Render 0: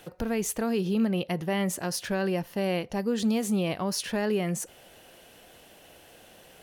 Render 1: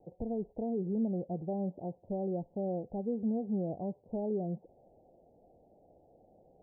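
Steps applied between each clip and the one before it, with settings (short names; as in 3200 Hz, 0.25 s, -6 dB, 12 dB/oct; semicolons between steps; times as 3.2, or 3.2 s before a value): steep low-pass 810 Hz 72 dB/oct; gain -6.5 dB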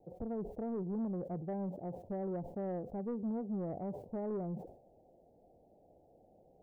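soft clip -29.5 dBFS, distortion -17 dB; sustainer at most 97 dB/s; gain -2 dB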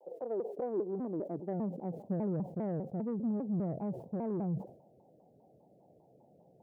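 high-pass sweep 470 Hz -> 140 Hz, 0.36–2.56; shaped vibrato saw down 5 Hz, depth 250 cents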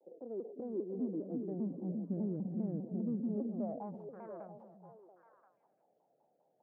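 band-pass sweep 260 Hz -> 1400 Hz, 3.17–4.1; delay with a stepping band-pass 0.343 s, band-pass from 190 Hz, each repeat 1.4 oct, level -2 dB; gain +2 dB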